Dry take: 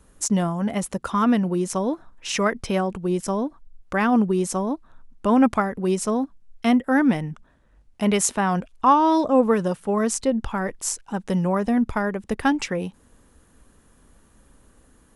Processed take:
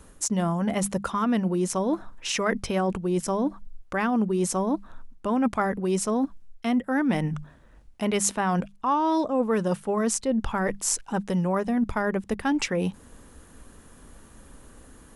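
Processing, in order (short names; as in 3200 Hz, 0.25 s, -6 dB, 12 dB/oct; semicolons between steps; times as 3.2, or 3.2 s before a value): notches 50/100/150/200 Hz; reverse; compressor 4:1, threshold -30 dBFS, peak gain reduction 15.5 dB; reverse; gain +6.5 dB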